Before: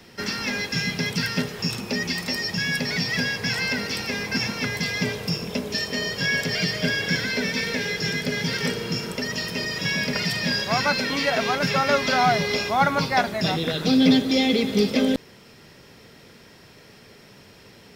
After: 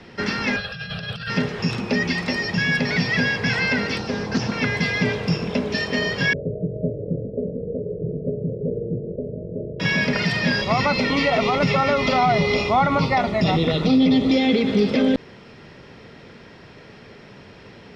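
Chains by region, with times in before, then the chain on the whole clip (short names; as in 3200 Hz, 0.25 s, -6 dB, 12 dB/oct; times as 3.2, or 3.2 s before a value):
0.56–1.3 bell 360 Hz -15 dB 0.75 oct + negative-ratio compressor -29 dBFS, ratio -0.5 + fixed phaser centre 1400 Hz, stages 8
3.98–4.52 LPF 10000 Hz 24 dB/oct + bell 2200 Hz -14 dB 0.91 oct + Doppler distortion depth 0.21 ms
6.33–9.8 steep low-pass 600 Hz 72 dB/oct + bell 230 Hz -8 dB 0.83 oct
10.61–14.34 Butterworth band-stop 1600 Hz, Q 4.6 + low shelf 70 Hz +11 dB
whole clip: Bessel low-pass 2800 Hz, order 2; limiter -16 dBFS; gain +6 dB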